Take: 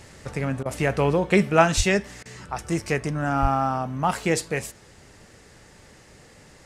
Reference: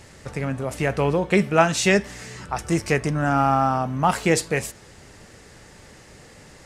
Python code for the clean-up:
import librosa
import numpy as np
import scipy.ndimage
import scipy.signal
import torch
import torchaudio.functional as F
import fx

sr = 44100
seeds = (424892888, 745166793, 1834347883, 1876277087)

y = fx.fix_deplosive(x, sr, at_s=(1.76, 3.41))
y = fx.fix_interpolate(y, sr, at_s=(0.63, 2.23), length_ms=24.0)
y = fx.gain(y, sr, db=fx.steps((0.0, 0.0), (1.81, 3.5)))